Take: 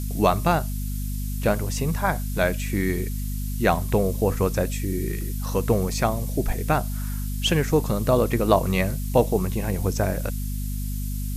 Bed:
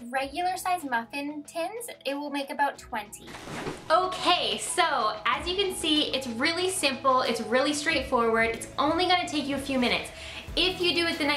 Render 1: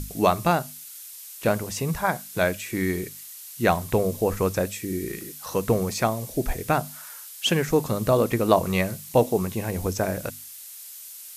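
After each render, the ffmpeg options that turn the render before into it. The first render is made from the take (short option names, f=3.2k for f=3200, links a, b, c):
-af "bandreject=f=50:t=h:w=6,bandreject=f=100:t=h:w=6,bandreject=f=150:t=h:w=6,bandreject=f=200:t=h:w=6,bandreject=f=250:t=h:w=6"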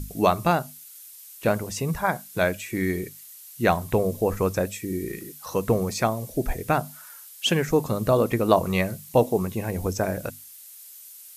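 -af "afftdn=nr=6:nf=-42"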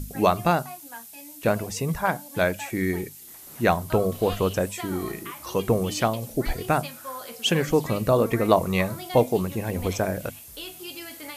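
-filter_complex "[1:a]volume=-14dB[a];[0:a][a]amix=inputs=2:normalize=0"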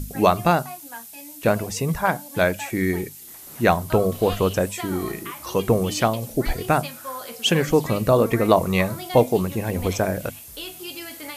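-af "volume=3dB,alimiter=limit=-1dB:level=0:latency=1"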